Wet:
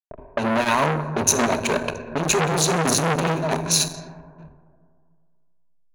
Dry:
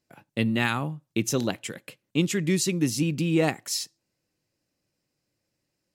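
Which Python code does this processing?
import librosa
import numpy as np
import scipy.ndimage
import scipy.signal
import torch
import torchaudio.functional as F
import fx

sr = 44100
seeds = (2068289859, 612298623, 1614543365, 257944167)

p1 = fx.band_shelf(x, sr, hz=710.0, db=13.0, octaves=1.7)
p2 = fx.fuzz(p1, sr, gain_db=32.0, gate_db=-34.0)
p3 = p1 + (p2 * librosa.db_to_amplitude(-7.0))
p4 = fx.over_compress(p3, sr, threshold_db=-19.0, ratio=-1.0)
p5 = fx.env_lowpass(p4, sr, base_hz=370.0, full_db=-17.5)
p6 = p5 + fx.echo_feedback(p5, sr, ms=669, feedback_pct=29, wet_db=-18.5, dry=0)
p7 = fx.backlash(p6, sr, play_db=-24.5)
p8 = fx.hum_notches(p7, sr, base_hz=50, count=9)
p9 = fx.rev_plate(p8, sr, seeds[0], rt60_s=2.0, hf_ratio=0.4, predelay_ms=0, drr_db=8.0)
p10 = fx.env_lowpass(p9, sr, base_hz=1100.0, full_db=-20.0)
p11 = fx.ripple_eq(p10, sr, per_octave=1.5, db=14)
p12 = fx.transformer_sat(p11, sr, knee_hz=2300.0)
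y = p12 * librosa.db_to_amplitude(2.0)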